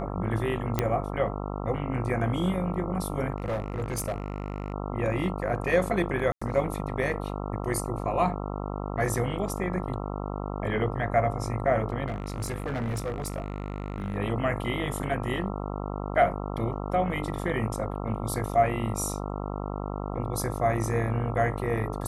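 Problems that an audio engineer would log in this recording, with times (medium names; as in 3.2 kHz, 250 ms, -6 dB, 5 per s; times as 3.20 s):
buzz 50 Hz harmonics 27 -33 dBFS
0.79 s: pop -10 dBFS
3.36–4.74 s: clipped -25.5 dBFS
6.32–6.42 s: dropout 95 ms
12.06–14.16 s: clipped -26.5 dBFS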